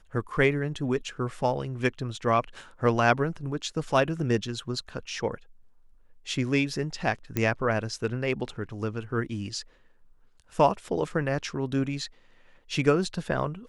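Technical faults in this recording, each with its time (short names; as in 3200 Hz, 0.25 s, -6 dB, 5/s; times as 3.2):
7.37 pop -12 dBFS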